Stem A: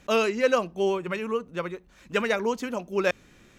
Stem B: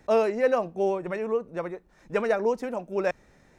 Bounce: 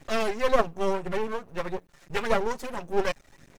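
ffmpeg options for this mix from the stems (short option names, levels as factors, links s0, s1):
-filter_complex "[0:a]volume=0.891[s0];[1:a]highshelf=f=4700:g=9,aecho=1:1:7.3:0.53,aphaser=in_gain=1:out_gain=1:delay=1.6:decay=0.52:speed=1.7:type=triangular,adelay=6.2,volume=1.19,asplit=2[s1][s2];[s2]apad=whole_len=158011[s3];[s0][s3]sidechaincompress=threshold=0.0501:ratio=8:attack=16:release=681[s4];[s4][s1]amix=inputs=2:normalize=0,aeval=exprs='max(val(0),0)':c=same"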